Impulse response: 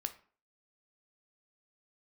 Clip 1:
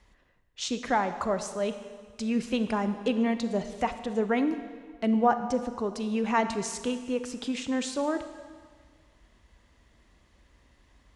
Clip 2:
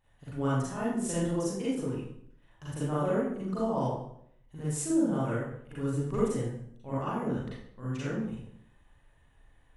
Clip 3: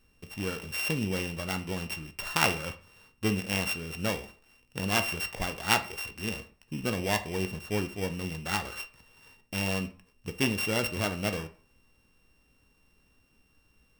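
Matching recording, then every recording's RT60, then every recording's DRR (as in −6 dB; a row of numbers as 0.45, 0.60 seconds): 3; 1.7, 0.70, 0.45 seconds; 9.5, −9.5, 7.5 decibels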